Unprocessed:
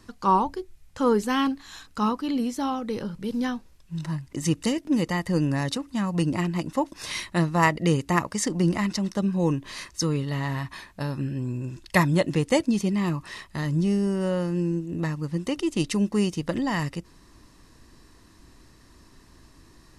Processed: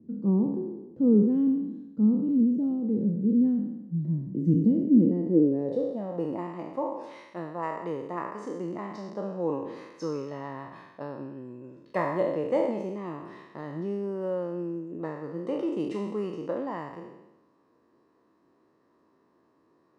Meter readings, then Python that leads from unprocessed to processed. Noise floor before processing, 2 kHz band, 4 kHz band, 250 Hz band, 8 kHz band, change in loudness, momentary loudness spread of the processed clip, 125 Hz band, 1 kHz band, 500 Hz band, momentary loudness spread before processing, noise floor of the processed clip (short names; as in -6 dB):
-54 dBFS, -14.5 dB, under -20 dB, 0.0 dB, under -25 dB, -2.0 dB, 17 LU, -7.0 dB, -9.5 dB, -1.0 dB, 10 LU, -67 dBFS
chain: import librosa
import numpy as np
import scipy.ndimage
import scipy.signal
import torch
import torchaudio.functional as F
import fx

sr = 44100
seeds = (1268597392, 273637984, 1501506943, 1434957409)

y = fx.spec_trails(x, sr, decay_s=1.03)
y = scipy.signal.sosfilt(scipy.signal.butter(2, 120.0, 'highpass', fs=sr, output='sos'), y)
y = fx.filter_sweep_bandpass(y, sr, from_hz=200.0, to_hz=1100.0, start_s=4.88, end_s=6.55, q=2.6)
y = fx.rider(y, sr, range_db=5, speed_s=2.0)
y = fx.low_shelf_res(y, sr, hz=710.0, db=14.0, q=1.5)
y = F.gain(torch.from_numpy(y), -8.5).numpy()